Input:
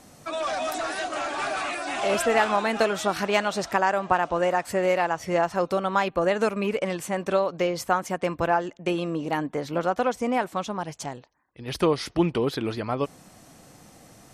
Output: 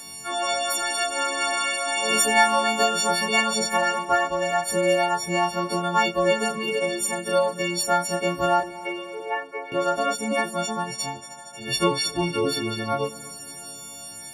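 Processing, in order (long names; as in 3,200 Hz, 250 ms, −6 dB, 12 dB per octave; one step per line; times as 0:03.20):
every partial snapped to a pitch grid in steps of 4 semitones
0:08.60–0:09.72: elliptic band-pass filter 410–2,400 Hz
on a send: echo machine with several playback heads 77 ms, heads first and third, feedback 73%, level −20 dB
on the sum: chorus effect 0.18 Hz, depth 6.2 ms
one half of a high-frequency compander encoder only
level +2.5 dB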